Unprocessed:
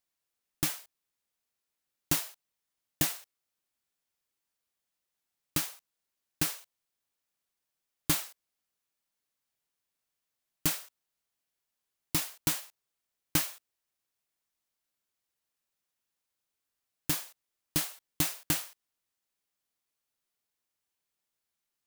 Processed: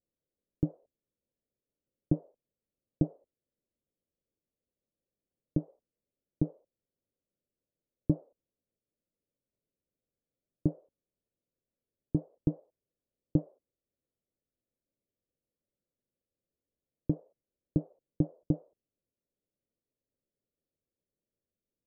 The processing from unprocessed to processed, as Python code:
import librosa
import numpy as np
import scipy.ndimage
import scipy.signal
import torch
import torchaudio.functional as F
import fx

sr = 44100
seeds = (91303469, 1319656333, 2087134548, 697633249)

y = scipy.signal.sosfilt(scipy.signal.ellip(4, 1.0, 80, 560.0, 'lowpass', fs=sr, output='sos'), x)
y = F.gain(torch.from_numpy(y), 7.0).numpy()